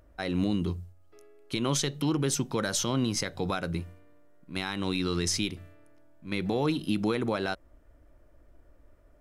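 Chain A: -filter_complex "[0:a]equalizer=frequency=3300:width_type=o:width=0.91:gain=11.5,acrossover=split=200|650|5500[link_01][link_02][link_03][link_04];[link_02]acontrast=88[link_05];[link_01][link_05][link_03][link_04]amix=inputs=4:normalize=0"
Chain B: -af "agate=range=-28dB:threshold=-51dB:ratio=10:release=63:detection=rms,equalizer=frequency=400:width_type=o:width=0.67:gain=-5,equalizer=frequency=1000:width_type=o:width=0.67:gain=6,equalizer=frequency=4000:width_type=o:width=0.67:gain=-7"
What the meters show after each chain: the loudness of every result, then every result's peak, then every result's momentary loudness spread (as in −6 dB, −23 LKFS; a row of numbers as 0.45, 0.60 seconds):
−24.5, −31.0 LKFS; −9.0, −16.5 dBFS; 9, 10 LU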